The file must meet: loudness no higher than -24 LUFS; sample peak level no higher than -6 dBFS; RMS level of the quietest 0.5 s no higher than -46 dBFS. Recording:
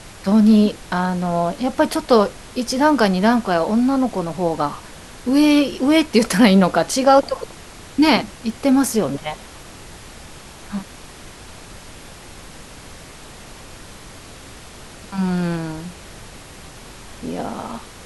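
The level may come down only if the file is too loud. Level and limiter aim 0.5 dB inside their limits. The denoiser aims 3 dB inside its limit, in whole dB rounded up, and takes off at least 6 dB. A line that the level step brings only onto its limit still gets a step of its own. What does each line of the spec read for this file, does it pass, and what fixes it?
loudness -18.0 LUFS: fail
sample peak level -2.0 dBFS: fail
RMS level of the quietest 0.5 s -39 dBFS: fail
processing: noise reduction 6 dB, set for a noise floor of -39 dBFS; trim -6.5 dB

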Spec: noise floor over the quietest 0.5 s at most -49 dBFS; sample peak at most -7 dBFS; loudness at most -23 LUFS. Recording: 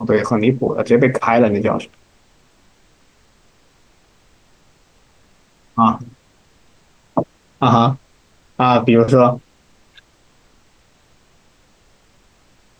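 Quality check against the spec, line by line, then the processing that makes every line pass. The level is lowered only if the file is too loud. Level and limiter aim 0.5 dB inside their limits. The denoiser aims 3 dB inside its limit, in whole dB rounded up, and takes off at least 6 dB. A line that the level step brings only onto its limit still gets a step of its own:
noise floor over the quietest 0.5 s -54 dBFS: pass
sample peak -1.5 dBFS: fail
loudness -16.0 LUFS: fail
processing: trim -7.5 dB

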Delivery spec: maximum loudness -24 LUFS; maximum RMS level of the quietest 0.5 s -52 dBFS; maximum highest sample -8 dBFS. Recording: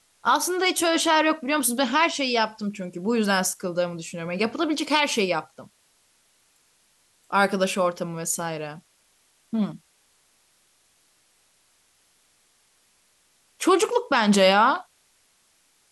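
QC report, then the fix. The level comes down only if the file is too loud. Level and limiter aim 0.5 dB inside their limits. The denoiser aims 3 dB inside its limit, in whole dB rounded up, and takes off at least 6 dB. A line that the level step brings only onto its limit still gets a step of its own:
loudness -23.0 LUFS: fail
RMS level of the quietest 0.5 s -64 dBFS: pass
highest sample -7.0 dBFS: fail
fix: trim -1.5 dB

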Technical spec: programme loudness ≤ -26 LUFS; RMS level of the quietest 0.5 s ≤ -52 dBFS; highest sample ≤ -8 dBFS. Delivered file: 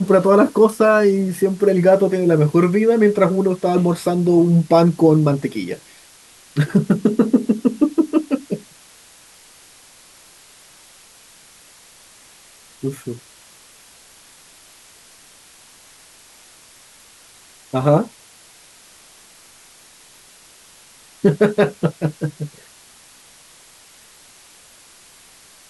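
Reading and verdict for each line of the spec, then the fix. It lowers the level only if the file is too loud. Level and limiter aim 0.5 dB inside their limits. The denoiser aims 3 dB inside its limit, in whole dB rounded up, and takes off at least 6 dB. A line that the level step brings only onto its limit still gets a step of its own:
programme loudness -17.0 LUFS: fail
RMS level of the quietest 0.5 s -47 dBFS: fail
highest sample -3.0 dBFS: fail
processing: trim -9.5 dB

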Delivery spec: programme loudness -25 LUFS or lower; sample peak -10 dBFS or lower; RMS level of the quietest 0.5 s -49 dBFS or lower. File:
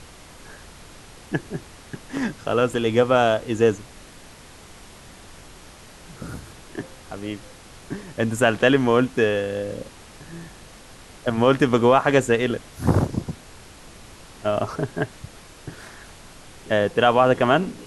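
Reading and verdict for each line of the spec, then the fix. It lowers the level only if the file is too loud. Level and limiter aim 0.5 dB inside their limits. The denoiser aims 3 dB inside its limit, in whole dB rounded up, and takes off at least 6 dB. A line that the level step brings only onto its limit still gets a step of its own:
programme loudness -21.5 LUFS: fail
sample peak -4.5 dBFS: fail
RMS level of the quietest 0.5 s -45 dBFS: fail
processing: noise reduction 6 dB, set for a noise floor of -45 dBFS; trim -4 dB; peak limiter -10.5 dBFS

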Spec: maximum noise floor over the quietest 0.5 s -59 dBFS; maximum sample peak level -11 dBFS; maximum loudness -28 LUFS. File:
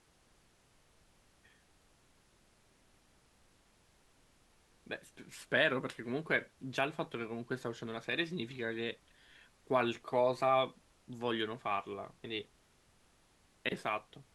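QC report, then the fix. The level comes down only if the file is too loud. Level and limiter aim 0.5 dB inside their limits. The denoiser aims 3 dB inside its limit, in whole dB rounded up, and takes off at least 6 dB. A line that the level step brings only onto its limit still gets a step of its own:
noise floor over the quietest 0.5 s -69 dBFS: pass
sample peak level -16.5 dBFS: pass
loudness -36.0 LUFS: pass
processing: none needed

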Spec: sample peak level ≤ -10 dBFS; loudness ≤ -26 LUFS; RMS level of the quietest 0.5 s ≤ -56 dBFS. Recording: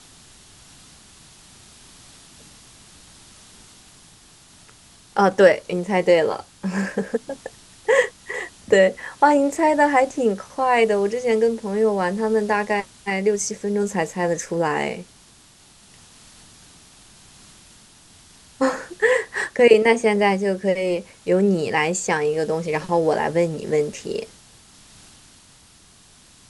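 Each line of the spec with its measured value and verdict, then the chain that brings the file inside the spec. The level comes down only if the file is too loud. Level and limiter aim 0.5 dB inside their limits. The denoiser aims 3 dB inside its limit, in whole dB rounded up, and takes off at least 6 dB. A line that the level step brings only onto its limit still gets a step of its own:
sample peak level -1.5 dBFS: fail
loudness -20.5 LUFS: fail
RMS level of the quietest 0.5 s -51 dBFS: fail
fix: trim -6 dB; peak limiter -10.5 dBFS

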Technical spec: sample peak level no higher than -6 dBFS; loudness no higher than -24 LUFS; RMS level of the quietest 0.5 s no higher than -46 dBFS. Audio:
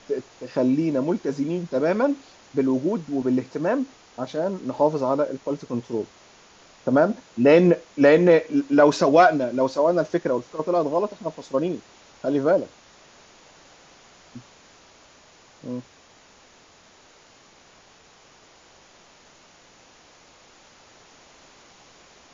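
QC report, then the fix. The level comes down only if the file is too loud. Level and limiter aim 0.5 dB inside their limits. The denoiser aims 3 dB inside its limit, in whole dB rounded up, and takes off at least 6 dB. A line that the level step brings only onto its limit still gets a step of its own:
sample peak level -2.5 dBFS: fail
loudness -22.0 LUFS: fail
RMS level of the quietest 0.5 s -53 dBFS: pass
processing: trim -2.5 dB; peak limiter -6.5 dBFS

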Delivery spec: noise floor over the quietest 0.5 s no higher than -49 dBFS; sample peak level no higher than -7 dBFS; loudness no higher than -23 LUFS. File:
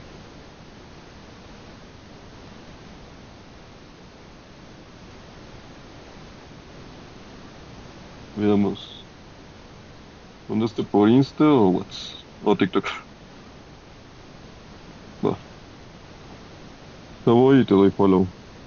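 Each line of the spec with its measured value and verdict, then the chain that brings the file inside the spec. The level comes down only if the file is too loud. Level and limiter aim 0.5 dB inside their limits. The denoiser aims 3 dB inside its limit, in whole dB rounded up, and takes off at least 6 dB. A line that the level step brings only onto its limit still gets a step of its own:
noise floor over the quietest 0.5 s -45 dBFS: fail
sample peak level -6.0 dBFS: fail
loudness -20.5 LUFS: fail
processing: noise reduction 6 dB, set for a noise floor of -45 dBFS; trim -3 dB

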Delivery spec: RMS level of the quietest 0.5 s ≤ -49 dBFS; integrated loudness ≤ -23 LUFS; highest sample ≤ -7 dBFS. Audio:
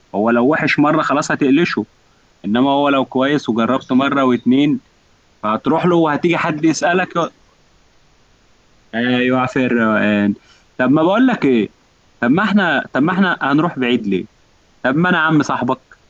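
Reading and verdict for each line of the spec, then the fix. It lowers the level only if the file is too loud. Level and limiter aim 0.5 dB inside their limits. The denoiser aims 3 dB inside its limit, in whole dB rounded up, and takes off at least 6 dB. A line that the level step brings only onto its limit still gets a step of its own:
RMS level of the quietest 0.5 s -54 dBFS: pass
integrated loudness -15.5 LUFS: fail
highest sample -5.5 dBFS: fail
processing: trim -8 dB

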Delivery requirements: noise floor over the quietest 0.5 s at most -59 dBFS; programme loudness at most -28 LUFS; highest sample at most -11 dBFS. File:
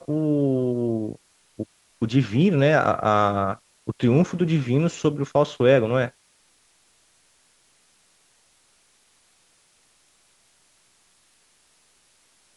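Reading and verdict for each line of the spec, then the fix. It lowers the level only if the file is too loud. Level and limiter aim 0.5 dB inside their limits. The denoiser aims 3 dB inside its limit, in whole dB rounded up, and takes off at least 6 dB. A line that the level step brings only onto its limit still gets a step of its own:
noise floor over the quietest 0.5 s -62 dBFS: pass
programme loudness -22.0 LUFS: fail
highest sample -6.0 dBFS: fail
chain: trim -6.5 dB

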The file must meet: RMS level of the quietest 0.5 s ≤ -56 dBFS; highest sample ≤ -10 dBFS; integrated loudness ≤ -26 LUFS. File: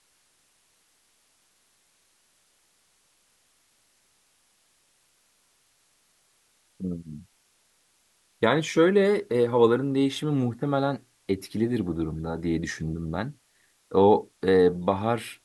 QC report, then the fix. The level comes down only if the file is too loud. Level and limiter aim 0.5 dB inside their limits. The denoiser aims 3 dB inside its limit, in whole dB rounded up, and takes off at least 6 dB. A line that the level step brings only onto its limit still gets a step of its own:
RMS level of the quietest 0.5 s -67 dBFS: pass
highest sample -6.0 dBFS: fail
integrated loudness -25.0 LUFS: fail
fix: trim -1.5 dB; peak limiter -10.5 dBFS

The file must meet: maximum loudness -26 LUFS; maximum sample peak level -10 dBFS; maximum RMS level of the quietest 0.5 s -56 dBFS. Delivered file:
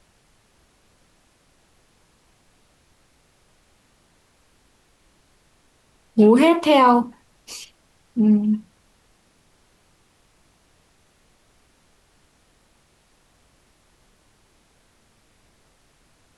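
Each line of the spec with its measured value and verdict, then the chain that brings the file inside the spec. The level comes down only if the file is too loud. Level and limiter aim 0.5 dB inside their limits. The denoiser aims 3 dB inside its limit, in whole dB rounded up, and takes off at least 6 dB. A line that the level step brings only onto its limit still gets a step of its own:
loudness -17.5 LUFS: fail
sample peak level -4.5 dBFS: fail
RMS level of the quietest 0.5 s -61 dBFS: pass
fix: trim -9 dB

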